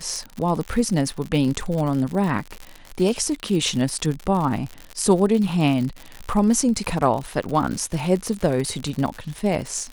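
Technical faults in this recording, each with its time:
crackle 87/s -26 dBFS

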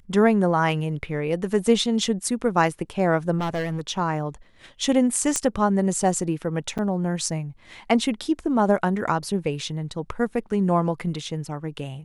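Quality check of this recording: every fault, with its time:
3.38–3.81 clipped -22.5 dBFS
5.36 pop -8 dBFS
6.78–6.79 gap 7.2 ms

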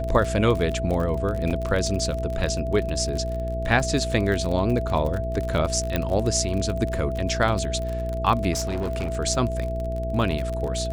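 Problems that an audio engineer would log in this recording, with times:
crackle 38/s -27 dBFS
hum 60 Hz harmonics 8 -29 dBFS
tone 660 Hz -29 dBFS
1.5–1.51 gap 7.4 ms
5.96 pop -10 dBFS
8.52–9.19 clipped -22.5 dBFS

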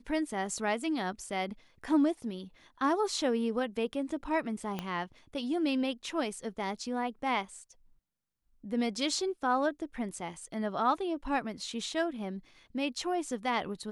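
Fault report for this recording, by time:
4.79 pop -20 dBFS

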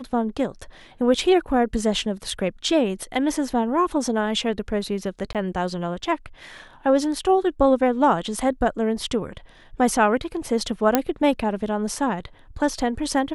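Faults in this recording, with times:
5.33–5.35 gap 17 ms
10.95 pop -2 dBFS

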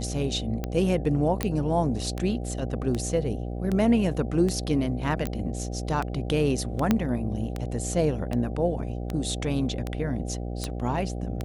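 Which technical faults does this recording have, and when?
buzz 60 Hz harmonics 13 -32 dBFS
tick 78 rpm -16 dBFS
1.43 pop -11 dBFS
5.27 pop -15 dBFS
6.91 pop -8 dBFS

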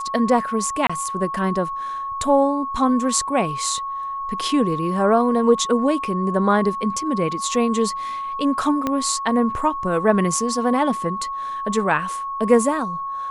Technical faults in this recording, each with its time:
tone 1100 Hz -25 dBFS
0.87–0.9 gap 25 ms
8.87 pop -9 dBFS

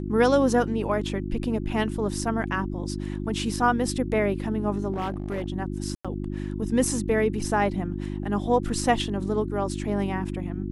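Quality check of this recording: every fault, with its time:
hum 50 Hz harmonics 7 -31 dBFS
4.92–5.46 clipped -24.5 dBFS
5.95–6.05 gap 96 ms

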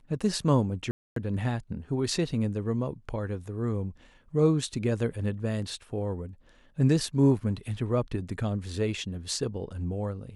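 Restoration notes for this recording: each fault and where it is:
0.91–1.16 gap 0.253 s

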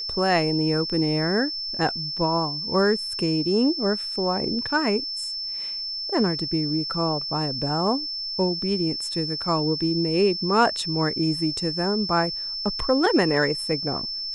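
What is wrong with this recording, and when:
tone 5300 Hz -28 dBFS

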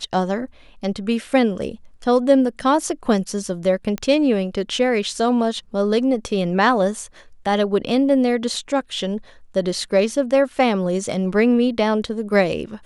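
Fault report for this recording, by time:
3.98 pop -13 dBFS

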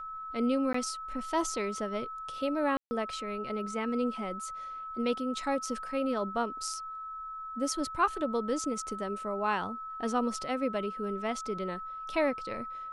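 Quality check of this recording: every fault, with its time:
tone 1300 Hz -38 dBFS
0.73–0.74 gap 14 ms
2.77–2.91 gap 0.14 s

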